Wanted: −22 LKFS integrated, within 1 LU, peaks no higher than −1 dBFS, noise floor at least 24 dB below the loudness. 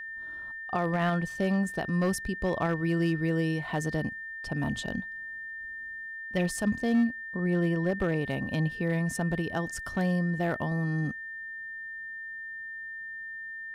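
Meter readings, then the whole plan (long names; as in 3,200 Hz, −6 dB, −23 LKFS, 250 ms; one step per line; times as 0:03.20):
share of clipped samples 0.4%; peaks flattened at −19.0 dBFS; interfering tone 1,800 Hz; level of the tone −37 dBFS; integrated loudness −30.5 LKFS; sample peak −19.0 dBFS; target loudness −22.0 LKFS
→ clipped peaks rebuilt −19 dBFS
notch filter 1,800 Hz, Q 30
level +8.5 dB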